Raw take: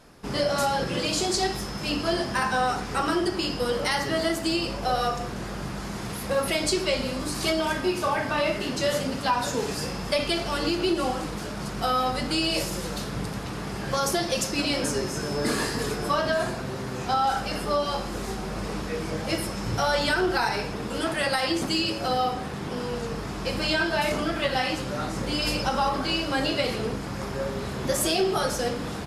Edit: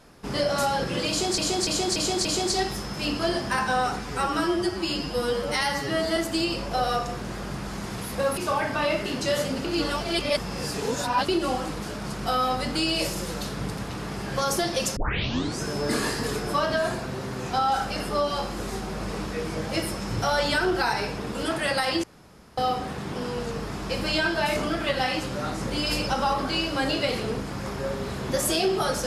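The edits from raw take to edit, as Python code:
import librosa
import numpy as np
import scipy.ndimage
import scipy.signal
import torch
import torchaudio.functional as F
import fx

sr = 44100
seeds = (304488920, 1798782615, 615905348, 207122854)

y = fx.edit(x, sr, fx.repeat(start_s=1.09, length_s=0.29, count=5),
    fx.stretch_span(start_s=2.83, length_s=1.45, factor=1.5),
    fx.cut(start_s=6.49, length_s=1.44),
    fx.reverse_span(start_s=9.2, length_s=1.64),
    fx.tape_start(start_s=14.52, length_s=0.65),
    fx.room_tone_fill(start_s=21.59, length_s=0.54), tone=tone)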